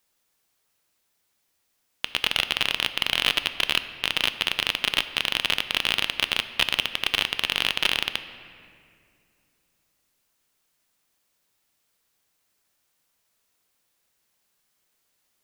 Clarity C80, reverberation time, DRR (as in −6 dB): 12.5 dB, 2.3 s, 10.5 dB